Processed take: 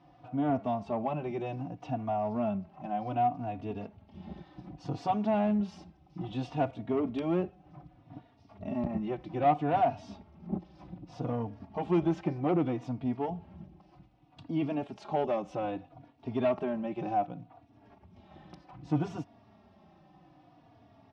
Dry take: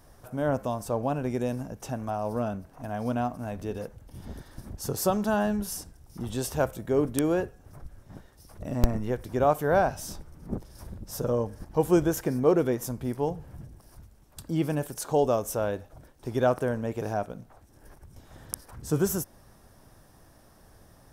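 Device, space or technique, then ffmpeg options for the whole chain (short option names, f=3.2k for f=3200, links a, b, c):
barber-pole flanger into a guitar amplifier: -filter_complex "[0:a]asplit=2[a][b];[b]adelay=3.5,afreqshift=-0.64[c];[a][c]amix=inputs=2:normalize=1,asoftclip=type=tanh:threshold=-22.5dB,highpass=110,equalizer=f=180:t=q:w=4:g=6,equalizer=f=300:t=q:w=4:g=6,equalizer=f=480:t=q:w=4:g=-9,equalizer=f=730:t=q:w=4:g=8,equalizer=f=1.6k:t=q:w=4:g=-9,equalizer=f=2.6k:t=q:w=4:g=4,lowpass=f=3.7k:w=0.5412,lowpass=f=3.7k:w=1.3066"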